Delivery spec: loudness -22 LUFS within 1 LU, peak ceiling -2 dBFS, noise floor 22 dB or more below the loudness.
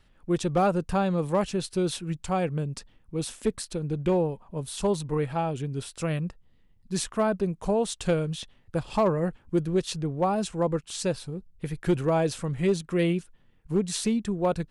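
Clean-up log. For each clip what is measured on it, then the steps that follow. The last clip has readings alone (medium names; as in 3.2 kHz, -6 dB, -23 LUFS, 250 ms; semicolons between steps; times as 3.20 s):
clipped samples 0.2%; clipping level -16.0 dBFS; loudness -28.0 LUFS; peak level -16.0 dBFS; loudness target -22.0 LUFS
-> clip repair -16 dBFS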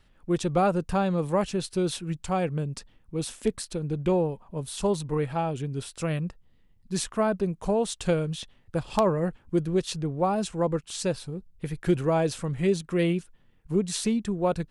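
clipped samples 0.0%; loudness -28.0 LUFS; peak level -7.0 dBFS; loudness target -22.0 LUFS
-> trim +6 dB; peak limiter -2 dBFS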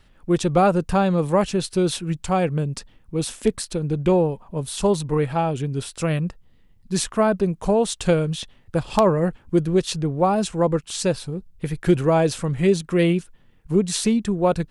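loudness -22.0 LUFS; peak level -2.0 dBFS; noise floor -54 dBFS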